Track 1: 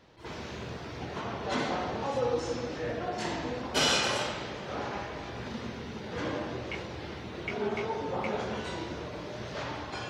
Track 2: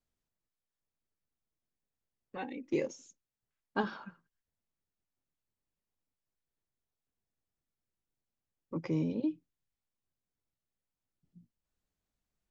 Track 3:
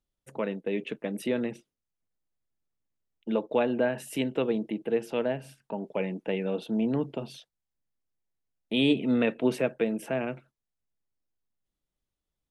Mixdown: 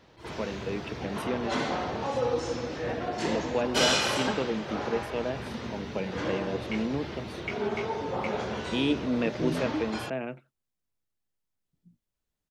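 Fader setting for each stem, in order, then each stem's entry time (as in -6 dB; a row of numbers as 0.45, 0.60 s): +1.5, -0.5, -3.5 dB; 0.00, 0.50, 0.00 s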